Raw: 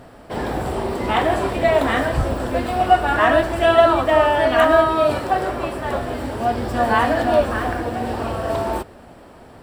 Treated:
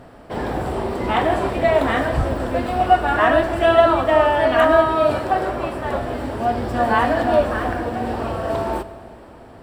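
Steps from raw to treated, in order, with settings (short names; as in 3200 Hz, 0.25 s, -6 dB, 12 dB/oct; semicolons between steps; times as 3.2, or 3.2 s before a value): high shelf 3900 Hz -5.5 dB; reverb RT60 2.8 s, pre-delay 37 ms, DRR 14.5 dB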